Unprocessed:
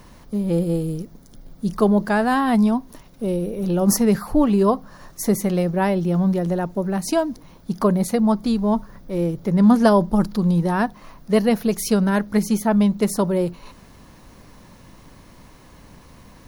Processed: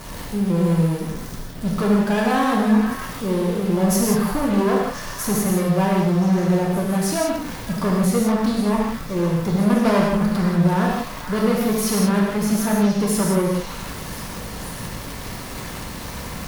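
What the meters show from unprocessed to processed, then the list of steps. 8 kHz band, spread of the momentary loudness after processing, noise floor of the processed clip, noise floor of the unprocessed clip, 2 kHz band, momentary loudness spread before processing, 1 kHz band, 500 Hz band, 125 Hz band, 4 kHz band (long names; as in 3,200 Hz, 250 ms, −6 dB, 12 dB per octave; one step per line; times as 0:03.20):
+3.5 dB, 13 LU, −33 dBFS, −47 dBFS, +2.5 dB, 10 LU, +0.5 dB, −0.5 dB, +2.0 dB, +4.5 dB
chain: converter with a step at zero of −28 dBFS
shaped tremolo saw up 4.1 Hz, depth 35%
tube saturation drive 18 dB, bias 0.45
echo through a band-pass that steps 515 ms, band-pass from 1,600 Hz, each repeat 1.4 octaves, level −6 dB
reverb whose tail is shaped and stops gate 210 ms flat, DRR −3 dB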